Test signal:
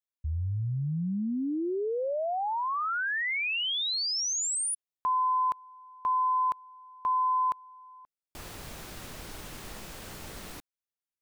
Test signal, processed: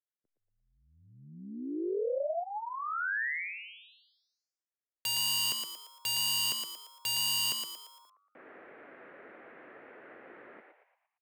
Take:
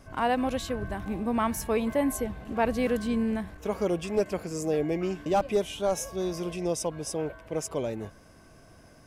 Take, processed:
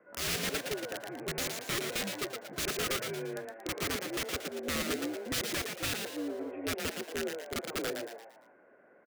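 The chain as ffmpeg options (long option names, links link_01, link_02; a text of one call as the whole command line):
ffmpeg -i in.wav -filter_complex "[0:a]highpass=frequency=420:width_type=q:width=0.5412,highpass=frequency=420:width_type=q:width=1.307,lowpass=frequency=2000:width_type=q:width=0.5176,lowpass=frequency=2000:width_type=q:width=0.7071,lowpass=frequency=2000:width_type=q:width=1.932,afreqshift=-79,aeval=exprs='(mod(21.1*val(0)+1,2)-1)/21.1':channel_layout=same,equalizer=frequency=920:width=1.6:gain=-11.5,asplit=2[link_01][link_02];[link_02]asplit=5[link_03][link_04][link_05][link_06][link_07];[link_03]adelay=115,afreqshift=100,volume=-5dB[link_08];[link_04]adelay=230,afreqshift=200,volume=-12.3dB[link_09];[link_05]adelay=345,afreqshift=300,volume=-19.7dB[link_10];[link_06]adelay=460,afreqshift=400,volume=-27dB[link_11];[link_07]adelay=575,afreqshift=500,volume=-34.3dB[link_12];[link_08][link_09][link_10][link_11][link_12]amix=inputs=5:normalize=0[link_13];[link_01][link_13]amix=inputs=2:normalize=0" out.wav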